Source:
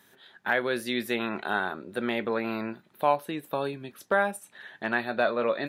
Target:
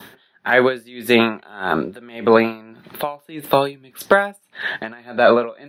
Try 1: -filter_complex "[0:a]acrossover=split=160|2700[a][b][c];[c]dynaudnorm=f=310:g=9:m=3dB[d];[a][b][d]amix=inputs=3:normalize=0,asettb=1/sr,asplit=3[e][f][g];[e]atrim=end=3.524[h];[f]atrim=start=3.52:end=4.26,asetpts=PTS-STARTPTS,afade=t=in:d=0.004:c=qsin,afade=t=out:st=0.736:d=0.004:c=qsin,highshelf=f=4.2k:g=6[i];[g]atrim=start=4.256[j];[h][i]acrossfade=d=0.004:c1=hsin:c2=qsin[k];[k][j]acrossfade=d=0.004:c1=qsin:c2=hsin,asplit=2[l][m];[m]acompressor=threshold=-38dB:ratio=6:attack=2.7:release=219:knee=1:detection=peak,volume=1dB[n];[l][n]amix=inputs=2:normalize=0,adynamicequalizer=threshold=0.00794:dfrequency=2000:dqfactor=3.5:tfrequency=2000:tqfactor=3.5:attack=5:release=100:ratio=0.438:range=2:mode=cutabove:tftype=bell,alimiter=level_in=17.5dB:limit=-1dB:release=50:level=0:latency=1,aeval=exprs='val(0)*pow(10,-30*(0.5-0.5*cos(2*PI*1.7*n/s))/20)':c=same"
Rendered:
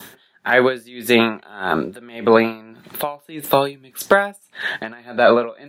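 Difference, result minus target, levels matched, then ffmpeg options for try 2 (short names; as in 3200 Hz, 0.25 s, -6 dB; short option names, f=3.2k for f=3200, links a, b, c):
8000 Hz band +5.5 dB
-filter_complex "[0:a]acrossover=split=160|2700[a][b][c];[c]dynaudnorm=f=310:g=9:m=3dB[d];[a][b][d]amix=inputs=3:normalize=0,asettb=1/sr,asplit=3[e][f][g];[e]atrim=end=3.524[h];[f]atrim=start=3.52:end=4.26,asetpts=PTS-STARTPTS,afade=t=in:d=0.004:c=qsin,afade=t=out:st=0.736:d=0.004:c=qsin,highshelf=f=4.2k:g=6[i];[g]atrim=start=4.256[j];[h][i]acrossfade=d=0.004:c1=hsin:c2=qsin[k];[k][j]acrossfade=d=0.004:c1=qsin:c2=hsin,asplit=2[l][m];[m]acompressor=threshold=-38dB:ratio=6:attack=2.7:release=219:knee=1:detection=peak,lowpass=f=7.4k:w=0.5412,lowpass=f=7.4k:w=1.3066,volume=1dB[n];[l][n]amix=inputs=2:normalize=0,adynamicequalizer=threshold=0.00794:dfrequency=2000:dqfactor=3.5:tfrequency=2000:tqfactor=3.5:attack=5:release=100:ratio=0.438:range=2:mode=cutabove:tftype=bell,alimiter=level_in=17.5dB:limit=-1dB:release=50:level=0:latency=1,aeval=exprs='val(0)*pow(10,-30*(0.5-0.5*cos(2*PI*1.7*n/s))/20)':c=same"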